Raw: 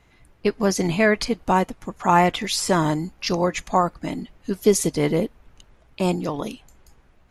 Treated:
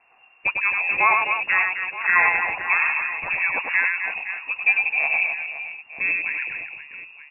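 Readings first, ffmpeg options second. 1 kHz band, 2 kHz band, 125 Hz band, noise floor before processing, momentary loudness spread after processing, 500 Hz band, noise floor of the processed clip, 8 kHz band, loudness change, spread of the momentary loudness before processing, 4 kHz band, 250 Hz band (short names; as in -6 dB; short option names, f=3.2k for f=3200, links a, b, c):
-2.5 dB, +11.5 dB, under -25 dB, -57 dBFS, 12 LU, -17.0 dB, -55 dBFS, under -40 dB, +2.0 dB, 12 LU, under -10 dB, under -25 dB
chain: -af "equalizer=f=1.8k:w=5.2:g=10.5,aecho=1:1:100|260|516|925.6|1581:0.631|0.398|0.251|0.158|0.1,lowpass=f=2.4k:t=q:w=0.5098,lowpass=f=2.4k:t=q:w=0.6013,lowpass=f=2.4k:t=q:w=0.9,lowpass=f=2.4k:t=q:w=2.563,afreqshift=-2800,volume=-3dB"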